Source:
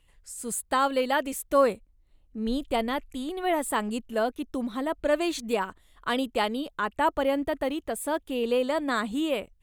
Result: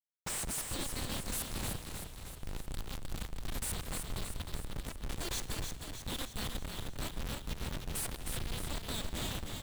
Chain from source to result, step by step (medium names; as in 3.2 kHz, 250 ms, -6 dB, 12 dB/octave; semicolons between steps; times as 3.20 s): rattle on loud lows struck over -42 dBFS, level -34 dBFS; Chebyshev band-stop 140–3600 Hz, order 5; dynamic bell 4.2 kHz, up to -8 dB, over -57 dBFS, Q 1.6; upward compressor, threshold -51 dBFS; Schmitt trigger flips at -46.5 dBFS; frequency-shifting echo 310 ms, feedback 58%, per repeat -31 Hz, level -5.5 dB; on a send at -17.5 dB: reverberation RT60 1.9 s, pre-delay 84 ms; on the sum: trim +9 dB